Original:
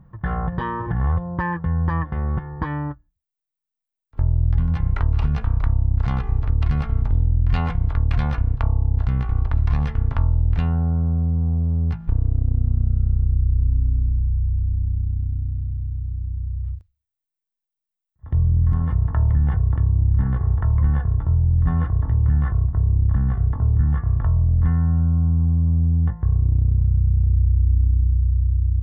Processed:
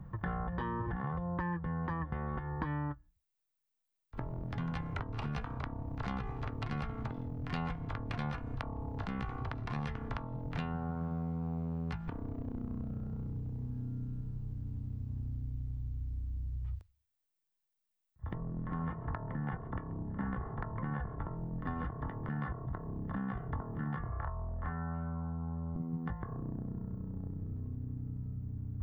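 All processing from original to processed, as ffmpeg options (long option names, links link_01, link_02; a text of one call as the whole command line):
ffmpeg -i in.wav -filter_complex "[0:a]asettb=1/sr,asplit=3[link_01][link_02][link_03];[link_01]atrim=end=18.344[link_04];[link_02]atrim=start=18.34:end=21.37,asetpts=PTS-STARTPTS,afade=type=in:duration=0.004:curve=qsin,afade=type=out:start_time=3.026:duration=0.004:curve=qsin,lowpass=2500,aecho=1:1:133:0.0708,atrim=end_sample=133623[link_05];[link_03]atrim=start=21.366[link_06];[link_04][link_05]acrossfade=duration=0.004:curve1=hsin:curve2=qsin[link_07];[link_07][link_06]acrossfade=duration=0.004:curve1=qsin:curve2=hsin,asettb=1/sr,asplit=3[link_08][link_09][link_10];[link_08]atrim=end=24.094[link_11];[link_09]atrim=start=24.09:end=25.76,asetpts=PTS-STARTPTS,afade=type=in:duration=0.004:curve=qsin,afade=type=out:start_time=1.666:duration=0.004:curve=qsin,acrossover=split=540 2000:gain=0.224 1 0.224[link_12][link_13][link_14];[link_12][link_13][link_14]amix=inputs=3:normalize=0,asplit=2[link_15][link_16];[link_16]adelay=29,volume=-2dB[link_17];[link_15][link_17]amix=inputs=2:normalize=0,atrim=end_sample=73647[link_18];[link_10]atrim=start=25.756[link_19];[link_11][link_18]acrossfade=duration=0.004:curve1=hsin:curve2=qsin[link_20];[link_20][link_19]acrossfade=duration=0.004:curve1=qsin:curve2=hsin,afftfilt=real='re*lt(hypot(re,im),0.708)':imag='im*lt(hypot(re,im),0.708)':win_size=1024:overlap=0.75,acrossover=split=320|840[link_21][link_22][link_23];[link_21]acompressor=threshold=-39dB:ratio=4[link_24];[link_22]acompressor=threshold=-49dB:ratio=4[link_25];[link_23]acompressor=threshold=-46dB:ratio=4[link_26];[link_24][link_25][link_26]amix=inputs=3:normalize=0,volume=1.5dB" out.wav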